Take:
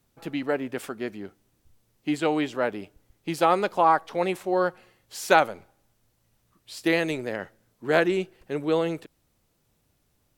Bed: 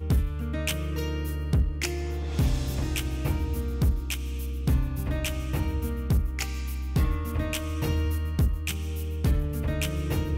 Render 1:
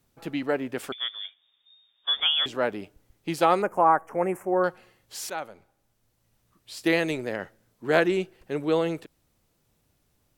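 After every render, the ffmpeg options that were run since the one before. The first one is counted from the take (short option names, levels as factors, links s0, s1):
-filter_complex "[0:a]asettb=1/sr,asplit=3[s0][s1][s2];[s0]atrim=end=0.924[s3];[s1]atrim=start=0.92:end=2.46,asetpts=PTS-STARTPTS,afade=t=in:d=0.004:c=qsin,afade=t=out:st=1.536:d=0.004:c=qsin,lowpass=f=3100:t=q:w=0.5098,lowpass=f=3100:t=q:w=0.6013,lowpass=f=3100:t=q:w=0.9,lowpass=f=3100:t=q:w=2.563,afreqshift=-3700[s4];[s2]atrim=start=2.456[s5];[s3][s4]acrossfade=d=0.004:c1=hsin:c2=qsin[s6];[s6][s5]acrossfade=d=0.004:c1=qsin:c2=hsin,asettb=1/sr,asplit=3[s7][s8][s9];[s7]atrim=end=3.624[s10];[s8]atrim=start=3.62:end=4.64,asetpts=PTS-STARTPTS,afade=t=in:d=0.004:c=qsin,afade=t=out:st=1.016:d=0.004:c=qsin,asuperstop=centerf=3900:order=4:qfactor=0.68[s11];[s9]atrim=start=4.636[s12];[s10][s11]acrossfade=d=0.004:c1=hsin:c2=qsin[s13];[s13][s12]acrossfade=d=0.004:c1=qsin:c2=hsin,asplit=2[s14][s15];[s14]atrim=end=5.3,asetpts=PTS-STARTPTS,afade=t=out:st=5.296:d=0.004:c=hsin:silence=0.112202[s16];[s15]atrim=start=5.3,asetpts=PTS-STARTPTS,afade=t=in:d=1.47:c=qsin:silence=0.112202[s17];[s16][s17]concat=n=2:v=0:a=1"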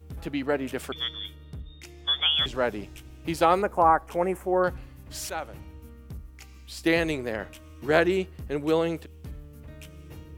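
-filter_complex "[1:a]volume=0.15[s0];[0:a][s0]amix=inputs=2:normalize=0"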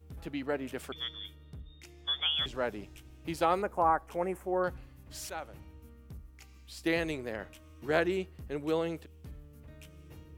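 -af "volume=0.447"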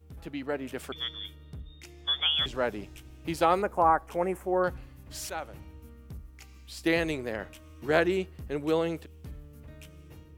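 -af "dynaudnorm=f=310:g=5:m=1.58"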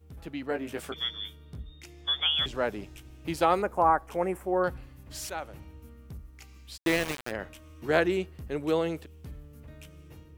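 -filter_complex "[0:a]asettb=1/sr,asplit=3[s0][s1][s2];[s0]atrim=end=0.494[s3];[s1]atrim=start=0.49:end=1.71,asetpts=PTS-STARTPTS,afade=t=in:d=0.004:c=qsin,afade=t=out:st=1.216:d=0.004:c=qsin,asplit=2[s4][s5];[s5]adelay=18,volume=0.562[s6];[s4][s6]amix=inputs=2:normalize=0,atrim=end_sample=53802[s7];[s2]atrim=start=1.706[s8];[s3][s7]acrossfade=d=0.004:c1=hsin:c2=qsin[s9];[s9][s8]acrossfade=d=0.004:c1=qsin:c2=hsin,asettb=1/sr,asplit=3[s10][s11][s12];[s10]atrim=end=4.294[s13];[s11]atrim=start=4.29:end=4.84,asetpts=PTS-STARTPTS,afade=t=in:d=0.004:c=qsin,afade=t=out:st=0.546:d=0.004:c=qsin,bandreject=f=6500:w=12[s14];[s12]atrim=start=4.836[s15];[s13][s14]acrossfade=d=0.004:c1=hsin:c2=qsin[s16];[s16][s15]acrossfade=d=0.004:c1=qsin:c2=hsin,asplit=3[s17][s18][s19];[s17]afade=t=out:st=6.76:d=0.02[s20];[s18]aeval=exprs='val(0)*gte(abs(val(0)),0.0422)':c=same,afade=t=in:st=6.76:d=0.02,afade=t=out:st=7.3:d=0.02[s21];[s19]afade=t=in:st=7.3:d=0.02[s22];[s20][s21][s22]amix=inputs=3:normalize=0"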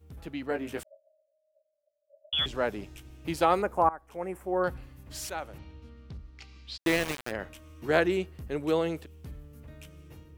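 -filter_complex "[0:a]asettb=1/sr,asplit=3[s0][s1][s2];[s0]atrim=end=0.834[s3];[s1]atrim=start=0.83:end=2.33,asetpts=PTS-STARTPTS,afade=t=in:d=0.004:c=qsin,afade=t=out:st=1.496:d=0.004:c=qsin,asuperpass=centerf=600:order=20:qfactor=6.1[s4];[s2]atrim=start=2.326[s5];[s3][s4]acrossfade=d=0.004:c1=hsin:c2=qsin[s6];[s6][s5]acrossfade=d=0.004:c1=qsin:c2=hsin,asettb=1/sr,asplit=3[s7][s8][s9];[s7]atrim=end=5.584[s10];[s8]atrim=start=5.58:end=6.8,asetpts=PTS-STARTPTS,afade=t=in:d=0.004:c=qsin,afade=t=out:st=1.216:d=0.004:c=qsin,lowpass=f=4300:t=q:w=2[s11];[s9]atrim=start=6.796[s12];[s10][s11]acrossfade=d=0.004:c1=hsin:c2=qsin[s13];[s13][s12]acrossfade=d=0.004:c1=qsin:c2=hsin,asplit=2[s14][s15];[s14]atrim=end=3.89,asetpts=PTS-STARTPTS,afade=t=out:st=3.886:d=0.004:c=hsin:silence=0.0944061[s16];[s15]atrim=start=3.89,asetpts=PTS-STARTPTS,afade=t=in:d=0.83:silence=0.0944061[s17];[s16][s17]concat=n=2:v=0:a=1"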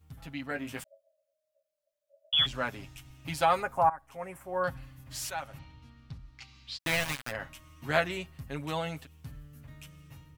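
-af "equalizer=f=390:w=1.5:g=-13.5,aecho=1:1:7.4:0.63"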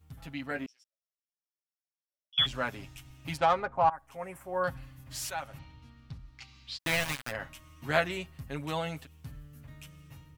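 -filter_complex "[0:a]asettb=1/sr,asplit=3[s0][s1][s2];[s0]atrim=end=0.664[s3];[s1]atrim=start=0.66:end=2.38,asetpts=PTS-STARTPTS,afade=t=in:d=0.004:c=qsin,afade=t=out:st=1.716:d=0.004:c=qsin,bandpass=f=5500:t=q:w=18[s4];[s2]atrim=start=2.376[s5];[s3][s4]acrossfade=d=0.004:c1=hsin:c2=qsin[s6];[s6][s5]acrossfade=d=0.004:c1=qsin:c2=hsin,asplit=3[s7][s8][s9];[s7]afade=t=out:st=3.36:d=0.02[s10];[s8]adynamicsmooth=sensitivity=1.5:basefreq=1900,afade=t=in:st=3.36:d=0.02,afade=t=out:st=3.91:d=0.02[s11];[s9]afade=t=in:st=3.91:d=0.02[s12];[s10][s11][s12]amix=inputs=3:normalize=0"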